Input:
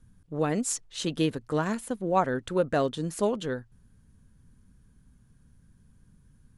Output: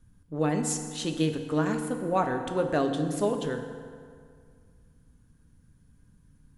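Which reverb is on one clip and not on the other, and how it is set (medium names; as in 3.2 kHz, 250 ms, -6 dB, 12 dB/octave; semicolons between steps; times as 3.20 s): FDN reverb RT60 2.1 s, low-frequency decay 1×, high-frequency decay 0.65×, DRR 5 dB; trim -1.5 dB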